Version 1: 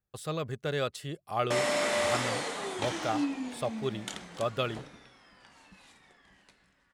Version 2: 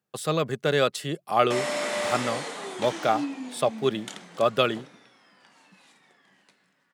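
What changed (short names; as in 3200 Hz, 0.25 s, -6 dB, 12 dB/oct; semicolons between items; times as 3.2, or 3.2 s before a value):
speech +9.0 dB; master: add HPF 150 Hz 24 dB/oct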